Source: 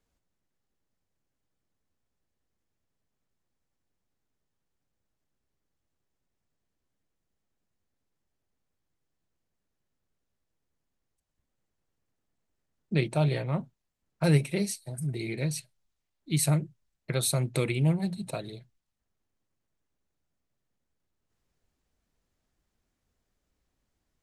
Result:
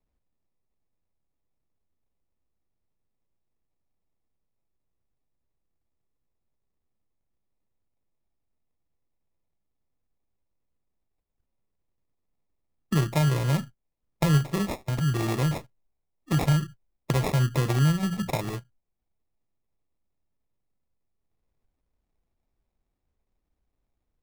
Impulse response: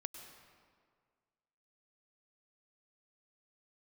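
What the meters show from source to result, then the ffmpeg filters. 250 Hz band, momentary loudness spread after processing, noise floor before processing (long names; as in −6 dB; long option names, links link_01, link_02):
+3.0 dB, 8 LU, −82 dBFS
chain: -filter_complex "[0:a]agate=range=-13dB:threshold=-42dB:ratio=16:detection=peak,lowshelf=frequency=69:gain=8.5,acrossover=split=110[link_01][link_02];[link_02]acompressor=threshold=-34dB:ratio=6[link_03];[link_01][link_03]amix=inputs=2:normalize=0,acrusher=samples=29:mix=1:aa=0.000001,volume=9dB"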